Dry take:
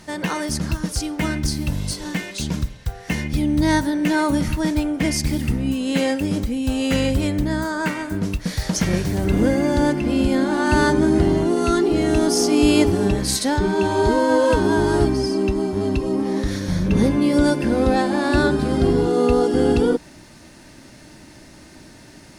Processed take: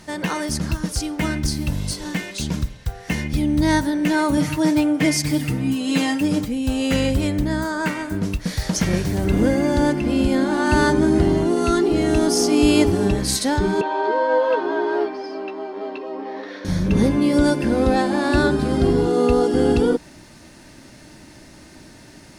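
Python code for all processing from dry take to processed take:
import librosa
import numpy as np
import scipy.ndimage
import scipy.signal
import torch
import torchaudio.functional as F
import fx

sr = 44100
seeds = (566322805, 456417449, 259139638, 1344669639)

y = fx.chain(x, sr, fx.highpass(hz=73.0, slope=24),
    fx.peak_eq(hz=170.0, db=-3.5, octaves=0.91),
    fx.comb(ms=6.6, depth=0.81), at=(4.37, 6.48))
y = fx.chain(y, sr, fx.highpass(hz=390.0, slope=24),
    fx.air_absorb(metres=300.0),
    fx.doubler(ms=14.0, db=-7), at=(13.81, 16.65))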